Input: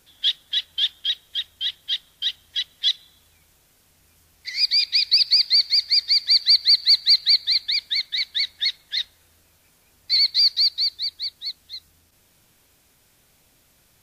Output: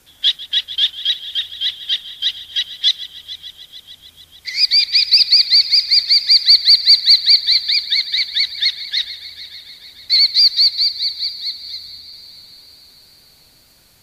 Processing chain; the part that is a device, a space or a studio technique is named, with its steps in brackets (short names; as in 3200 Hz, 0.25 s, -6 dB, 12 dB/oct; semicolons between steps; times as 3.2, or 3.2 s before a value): multi-head tape echo (multi-head echo 0.148 s, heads first and third, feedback 67%, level -17.5 dB; wow and flutter 19 cents); gain +6 dB